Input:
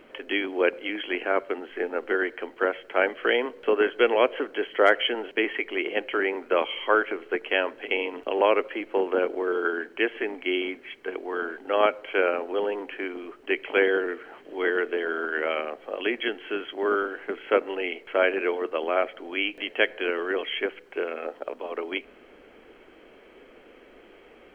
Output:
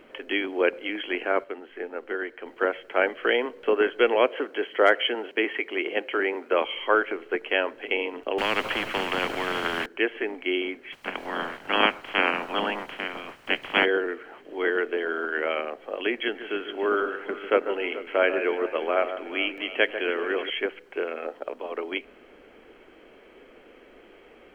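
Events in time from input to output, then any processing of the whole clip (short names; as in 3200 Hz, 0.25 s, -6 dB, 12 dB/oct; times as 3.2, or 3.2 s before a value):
1.44–2.46 gain -5.5 dB
4.28–6.65 HPF 170 Hz
8.38–9.86 spectral compressor 4:1
10.92–13.84 spectral limiter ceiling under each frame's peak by 24 dB
16.17–20.5 echo with dull and thin repeats by turns 0.144 s, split 1800 Hz, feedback 70%, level -10 dB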